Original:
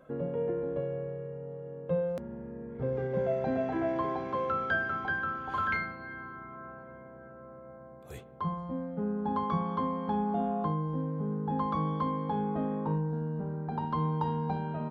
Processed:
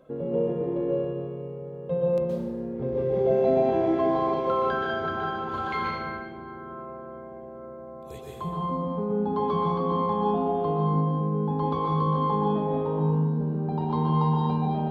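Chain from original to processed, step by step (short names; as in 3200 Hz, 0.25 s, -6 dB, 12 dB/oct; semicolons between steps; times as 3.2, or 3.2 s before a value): fifteen-band EQ 400 Hz +5 dB, 1600 Hz -7 dB, 4000 Hz +5 dB; reverb RT60 1.5 s, pre-delay 0.113 s, DRR -3.5 dB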